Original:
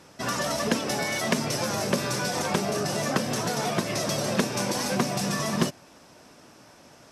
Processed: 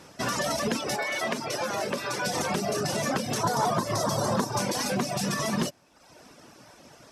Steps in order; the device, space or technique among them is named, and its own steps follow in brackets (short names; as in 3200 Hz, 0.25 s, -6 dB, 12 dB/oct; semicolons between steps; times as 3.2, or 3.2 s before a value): 0.96–2.26 tone controls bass -11 dB, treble -7 dB; reverb removal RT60 0.77 s; soft clipper into limiter (soft clip -13.5 dBFS, distortion -23 dB; limiter -21.5 dBFS, peak gain reduction 6.5 dB); 3.43–4.59 fifteen-band EQ 100 Hz +7 dB, 1000 Hz +11 dB, 2500 Hz -12 dB; gain +2.5 dB